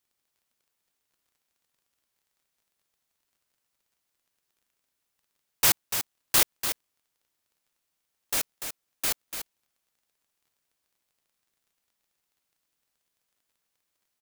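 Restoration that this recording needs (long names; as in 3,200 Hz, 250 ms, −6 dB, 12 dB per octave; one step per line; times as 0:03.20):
click removal
echo removal 292 ms −8.5 dB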